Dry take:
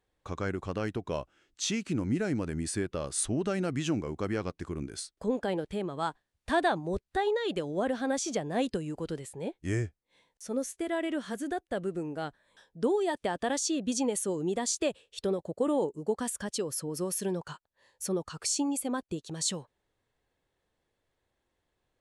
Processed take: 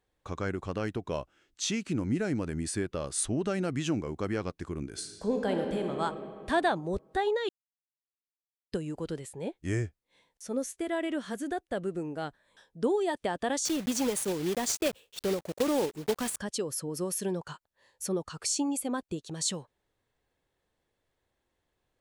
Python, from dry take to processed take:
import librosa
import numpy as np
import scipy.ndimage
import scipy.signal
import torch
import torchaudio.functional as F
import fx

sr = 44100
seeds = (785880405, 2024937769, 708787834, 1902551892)

y = fx.reverb_throw(x, sr, start_s=4.89, length_s=1.12, rt60_s=2.4, drr_db=3.0)
y = fx.block_float(y, sr, bits=3, at=(13.65, 16.38))
y = fx.edit(y, sr, fx.silence(start_s=7.49, length_s=1.23), tone=tone)